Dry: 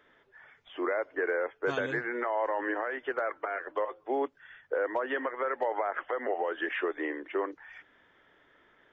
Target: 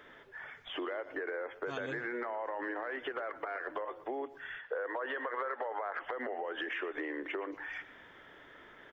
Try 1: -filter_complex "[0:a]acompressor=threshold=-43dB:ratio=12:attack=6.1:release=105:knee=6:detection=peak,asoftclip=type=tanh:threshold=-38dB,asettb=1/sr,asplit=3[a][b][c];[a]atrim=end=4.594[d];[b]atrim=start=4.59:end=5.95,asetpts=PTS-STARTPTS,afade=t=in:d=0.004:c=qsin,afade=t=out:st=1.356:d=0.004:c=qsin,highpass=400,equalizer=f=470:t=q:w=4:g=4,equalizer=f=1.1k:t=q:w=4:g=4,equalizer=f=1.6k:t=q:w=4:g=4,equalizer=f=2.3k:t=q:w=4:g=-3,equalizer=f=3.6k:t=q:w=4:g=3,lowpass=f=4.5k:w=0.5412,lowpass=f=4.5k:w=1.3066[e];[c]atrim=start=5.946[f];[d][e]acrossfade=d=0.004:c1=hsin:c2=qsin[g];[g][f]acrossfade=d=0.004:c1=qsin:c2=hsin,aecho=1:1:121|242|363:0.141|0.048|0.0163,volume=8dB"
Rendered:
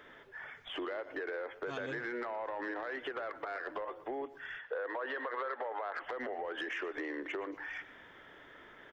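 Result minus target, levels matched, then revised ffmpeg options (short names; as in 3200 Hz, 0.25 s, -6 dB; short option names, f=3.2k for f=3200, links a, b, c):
soft clip: distortion +15 dB
-filter_complex "[0:a]acompressor=threshold=-43dB:ratio=12:attack=6.1:release=105:knee=6:detection=peak,asoftclip=type=tanh:threshold=-29dB,asettb=1/sr,asplit=3[a][b][c];[a]atrim=end=4.594[d];[b]atrim=start=4.59:end=5.95,asetpts=PTS-STARTPTS,afade=t=in:d=0.004:c=qsin,afade=t=out:st=1.356:d=0.004:c=qsin,highpass=400,equalizer=f=470:t=q:w=4:g=4,equalizer=f=1.1k:t=q:w=4:g=4,equalizer=f=1.6k:t=q:w=4:g=4,equalizer=f=2.3k:t=q:w=4:g=-3,equalizer=f=3.6k:t=q:w=4:g=3,lowpass=f=4.5k:w=0.5412,lowpass=f=4.5k:w=1.3066[e];[c]atrim=start=5.946[f];[d][e]acrossfade=d=0.004:c1=hsin:c2=qsin[g];[g][f]acrossfade=d=0.004:c1=qsin:c2=hsin,aecho=1:1:121|242|363:0.141|0.048|0.0163,volume=8dB"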